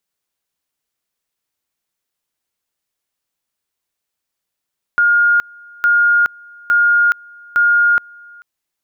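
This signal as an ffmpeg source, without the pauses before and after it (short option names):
-f lavfi -i "aevalsrc='pow(10,(-9-27.5*gte(mod(t,0.86),0.42))/20)*sin(2*PI*1420*t)':d=3.44:s=44100"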